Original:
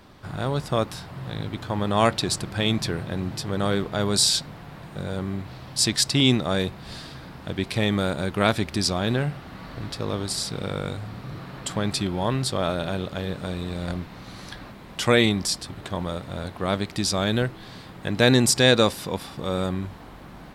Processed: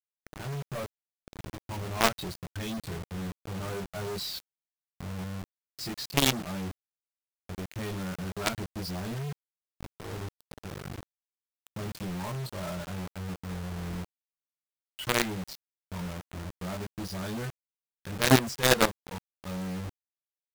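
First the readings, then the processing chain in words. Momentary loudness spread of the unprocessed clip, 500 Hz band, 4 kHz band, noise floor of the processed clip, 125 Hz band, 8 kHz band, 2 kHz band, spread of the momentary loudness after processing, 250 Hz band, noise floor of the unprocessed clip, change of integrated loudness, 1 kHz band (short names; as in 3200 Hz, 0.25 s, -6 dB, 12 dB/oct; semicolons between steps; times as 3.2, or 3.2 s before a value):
19 LU, -9.5 dB, -9.5 dB, under -85 dBFS, -8.0 dB, -9.0 dB, -5.5 dB, 19 LU, -9.0 dB, -43 dBFS, -8.0 dB, -6.0 dB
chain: per-bin expansion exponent 2; LPF 2500 Hz 12 dB/oct; doubler 22 ms -2.5 dB; companded quantiser 2-bit; gain -8.5 dB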